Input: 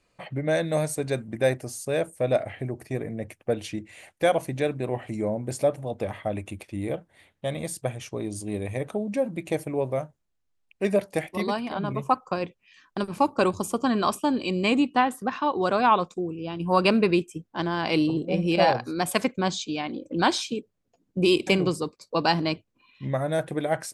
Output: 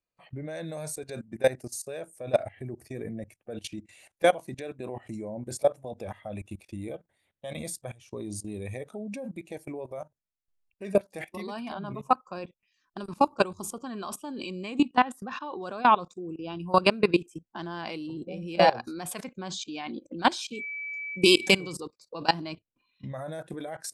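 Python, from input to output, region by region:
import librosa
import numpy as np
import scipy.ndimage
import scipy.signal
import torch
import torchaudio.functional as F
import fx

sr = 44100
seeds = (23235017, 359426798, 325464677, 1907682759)

y = fx.high_shelf(x, sr, hz=2800.0, db=11.0, at=(20.52, 21.71), fade=0.02)
y = fx.dmg_tone(y, sr, hz=2300.0, level_db=-31.0, at=(20.52, 21.71), fade=0.02)
y = fx.noise_reduce_blind(y, sr, reduce_db=8)
y = fx.level_steps(y, sr, step_db=19)
y = F.gain(torch.from_numpy(y), 2.0).numpy()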